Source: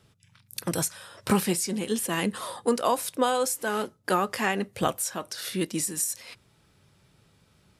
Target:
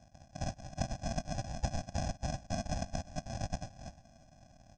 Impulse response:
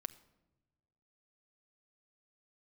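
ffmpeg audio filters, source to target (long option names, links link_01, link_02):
-af "afftfilt=real='hypot(re,im)*cos(2*PI*random(0))':imag='hypot(re,im)*sin(2*PI*random(1))':win_size=512:overlap=0.75,acompressor=threshold=-42dB:ratio=4,aresample=11025,acrusher=samples=40:mix=1:aa=0.000001,aresample=44100,superequalizer=6b=2.24:7b=2.51:8b=0.708:13b=3.55,asetrate=71883,aresample=44100,aecho=1:1:1.2:0.9,aecho=1:1:355:0.112,volume=3dB"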